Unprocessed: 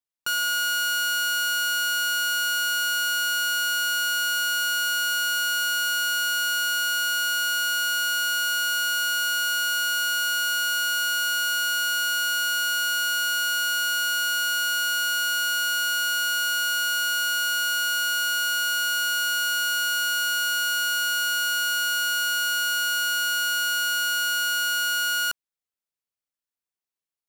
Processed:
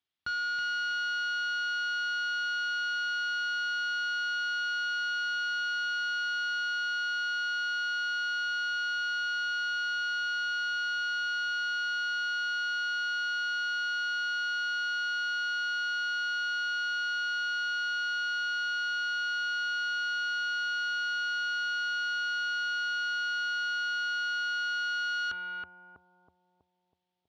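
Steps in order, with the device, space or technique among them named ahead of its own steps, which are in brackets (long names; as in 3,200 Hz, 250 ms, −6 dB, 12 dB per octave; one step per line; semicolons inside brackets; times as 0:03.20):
analogue delay pedal into a guitar amplifier (bucket-brigade delay 323 ms, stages 2,048, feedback 50%, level −4.5 dB; tube saturation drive 38 dB, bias 0.5; loudspeaker in its box 78–4,600 Hz, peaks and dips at 81 Hz +10 dB, 530 Hz −9 dB, 990 Hz −4 dB, 3,300 Hz +6 dB)
level +7.5 dB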